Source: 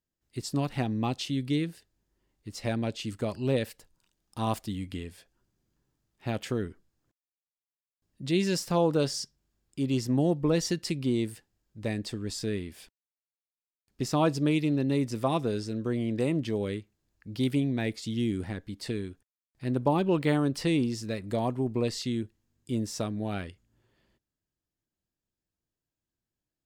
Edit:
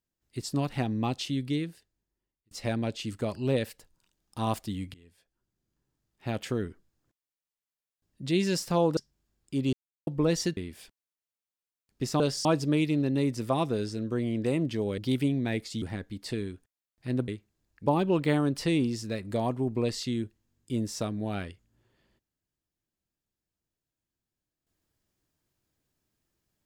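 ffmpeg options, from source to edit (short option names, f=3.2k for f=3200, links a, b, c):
-filter_complex "[0:a]asplit=13[a][b][c][d][e][f][g][h][i][j][k][l][m];[a]atrim=end=2.51,asetpts=PTS-STARTPTS,afade=t=out:st=1.32:d=1.19[n];[b]atrim=start=2.51:end=4.94,asetpts=PTS-STARTPTS,afade=t=in:d=0.004:c=hsin,afade=t=out:st=2.426:d=0.004:c=hsin:silence=0.0668344[o];[c]atrim=start=4.94:end=8.972,asetpts=PTS-STARTPTS,afade=t=in:d=1.48:silence=0.0668344[p];[d]atrim=start=9.218:end=9.98,asetpts=PTS-STARTPTS,afade=t=out:st=0.758:d=0.004:c=hsin[q];[e]atrim=start=9.98:end=10.32,asetpts=PTS-STARTPTS,volume=0[r];[f]atrim=start=10.32:end=10.822,asetpts=PTS-STARTPTS,afade=t=in:d=0.004:c=hsin[s];[g]atrim=start=12.558:end=14.192[t];[h]atrim=start=8.968:end=9.222[u];[i]atrim=start=14.188:end=16.722[v];[j]atrim=start=17.298:end=18.142[w];[k]atrim=start=18.388:end=19.852[x];[l]atrim=start=16.718:end=17.302[y];[m]atrim=start=19.848[z];[n][o][p]concat=n=3:v=0:a=1[aa];[q][r][s]concat=n=3:v=0:a=1[ab];[aa][ab]acrossfade=d=0.004:c1=hsin:c2=hsin[ac];[ac][t]acrossfade=d=0.004:c1=hsin:c2=hsin[ad];[ad][u]acrossfade=d=0.004:c1=hsin:c2=hsin[ae];[ae][v]acrossfade=d=0.004:c1=hsin:c2=hsin[af];[af][w]acrossfade=d=0.004:c1=hsin:c2=hsin[ag];[ag][x]acrossfade=d=0.004:c1=hsin:c2=hsin[ah];[ah][y]acrossfade=d=0.004:c1=hsin:c2=hsin[ai];[ai][z]acrossfade=d=0.004:c1=hsin:c2=hsin"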